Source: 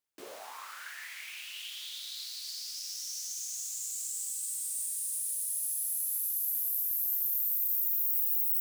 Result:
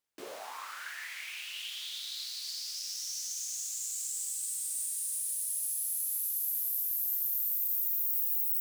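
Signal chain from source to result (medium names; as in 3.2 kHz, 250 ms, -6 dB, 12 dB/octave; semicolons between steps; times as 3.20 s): treble shelf 8.7 kHz -4.5 dB; trim +2.5 dB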